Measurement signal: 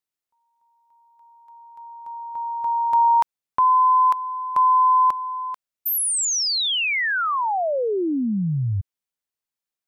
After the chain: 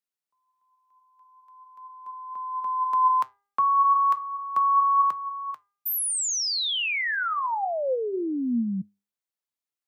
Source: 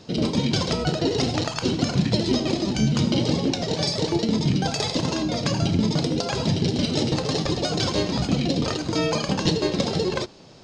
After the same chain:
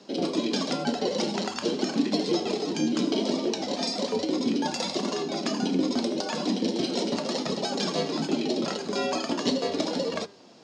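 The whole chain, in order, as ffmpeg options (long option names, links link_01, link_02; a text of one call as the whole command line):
ffmpeg -i in.wav -af "afreqshift=93,flanger=delay=4.8:depth=5.3:regen=78:speed=0.39:shape=triangular,bandreject=frequency=402.6:width_type=h:width=4,bandreject=frequency=805.2:width_type=h:width=4,bandreject=frequency=1207.8:width_type=h:width=4,bandreject=frequency=1610.4:width_type=h:width=4,bandreject=frequency=2013:width_type=h:width=4" out.wav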